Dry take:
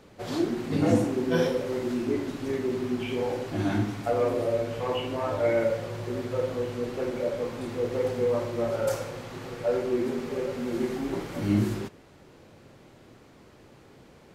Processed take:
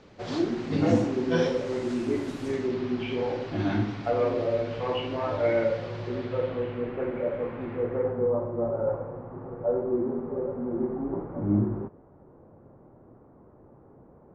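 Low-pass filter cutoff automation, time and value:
low-pass filter 24 dB per octave
0:01.41 6,300 Hz
0:02.41 12,000 Hz
0:02.75 5,000 Hz
0:06.06 5,000 Hz
0:07.00 2,400 Hz
0:07.74 2,400 Hz
0:08.37 1,100 Hz

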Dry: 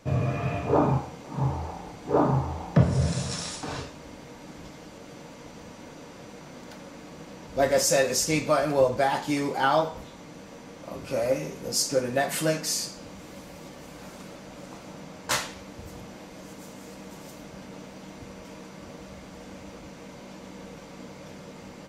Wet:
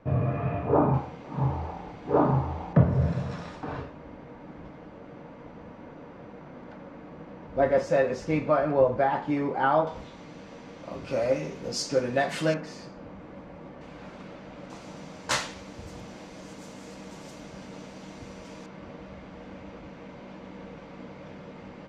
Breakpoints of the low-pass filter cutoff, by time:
1,700 Hz
from 0:00.94 2,900 Hz
from 0:02.73 1,700 Hz
from 0:09.87 4,500 Hz
from 0:12.54 1,700 Hz
from 0:13.81 3,000 Hz
from 0:14.70 7,600 Hz
from 0:18.66 2,800 Hz

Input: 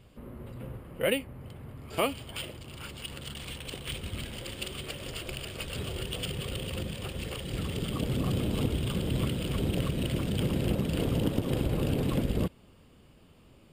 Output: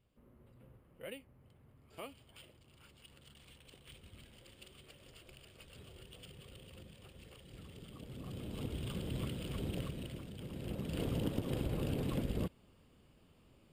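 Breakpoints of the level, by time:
0:08.06 −19.5 dB
0:08.84 −10 dB
0:09.78 −10 dB
0:10.37 −19 dB
0:11.01 −8 dB

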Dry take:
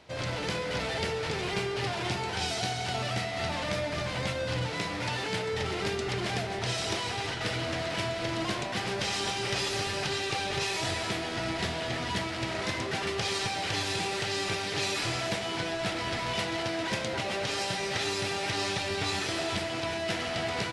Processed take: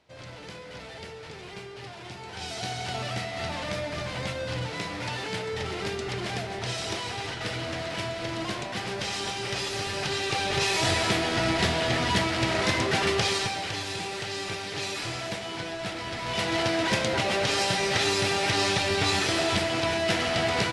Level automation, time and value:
0:02.12 −10 dB
0:02.74 −0.5 dB
0:09.72 −0.5 dB
0:10.92 +7 dB
0:13.14 +7 dB
0:13.77 −2 dB
0:16.16 −2 dB
0:16.56 +6 dB

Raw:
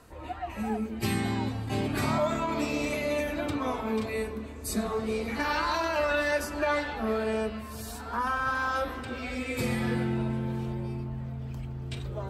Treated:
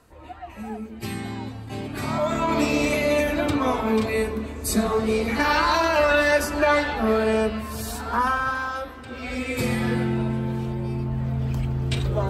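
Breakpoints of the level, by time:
0:01.92 −2.5 dB
0:02.52 +8 dB
0:08.21 +8 dB
0:08.96 −4 dB
0:09.33 +5 dB
0:10.75 +5 dB
0:11.39 +11.5 dB

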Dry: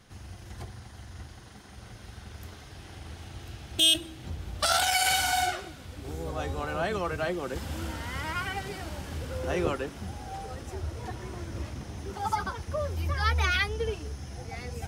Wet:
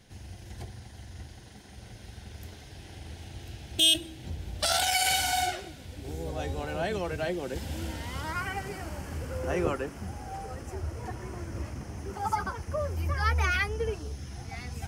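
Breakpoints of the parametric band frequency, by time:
parametric band −11.5 dB 0.45 octaves
0:08.00 1,200 Hz
0:08.44 3,700 Hz
0:13.93 3,700 Hz
0:14.34 500 Hz

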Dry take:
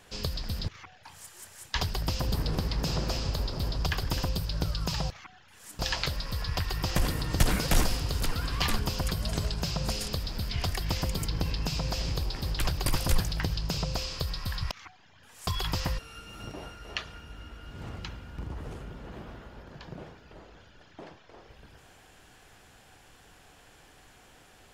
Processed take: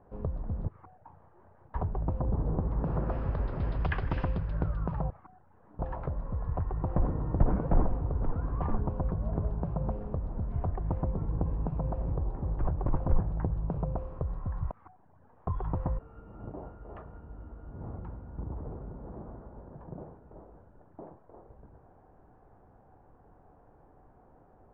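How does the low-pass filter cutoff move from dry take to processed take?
low-pass filter 24 dB per octave
0:02.55 1,000 Hz
0:03.70 2,200 Hz
0:04.21 2,200 Hz
0:05.21 1,000 Hz

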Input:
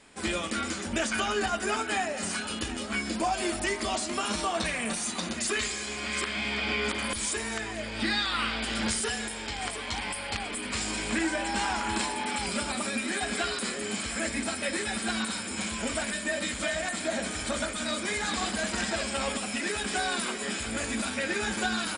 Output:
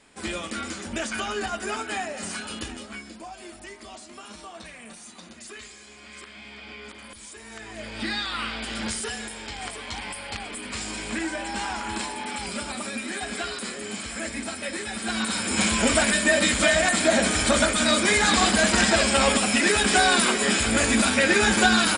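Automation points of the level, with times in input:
0:02.65 −1 dB
0:03.19 −12.5 dB
0:07.35 −12.5 dB
0:07.85 −1 dB
0:14.93 −1 dB
0:15.61 +10.5 dB

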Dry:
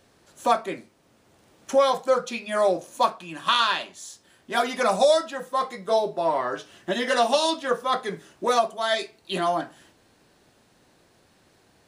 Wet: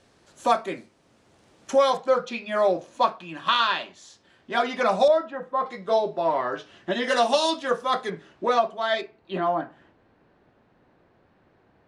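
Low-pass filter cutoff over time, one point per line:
8,500 Hz
from 0:01.97 4,200 Hz
from 0:05.08 1,600 Hz
from 0:05.66 4,300 Hz
from 0:07.04 8,100 Hz
from 0:08.10 3,400 Hz
from 0:09.01 1,800 Hz

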